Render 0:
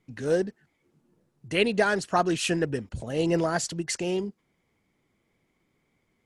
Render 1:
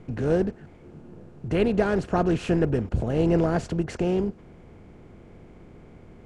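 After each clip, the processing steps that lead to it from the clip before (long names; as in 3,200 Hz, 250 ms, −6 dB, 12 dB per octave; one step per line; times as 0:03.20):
compressor on every frequency bin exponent 0.6
spectral tilt −4 dB per octave
level −5.5 dB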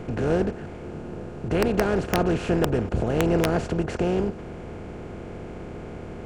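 compressor on every frequency bin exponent 0.6
wrap-around overflow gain 9 dB
level −2.5 dB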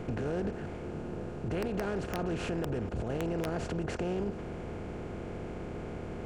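brickwall limiter −22 dBFS, peak gain reduction 10.5 dB
reversed playback
upward compression, threshold −32 dBFS
reversed playback
level −3.5 dB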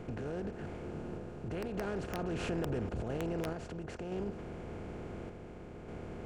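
sample-and-hold tremolo 1.7 Hz
level −1.5 dB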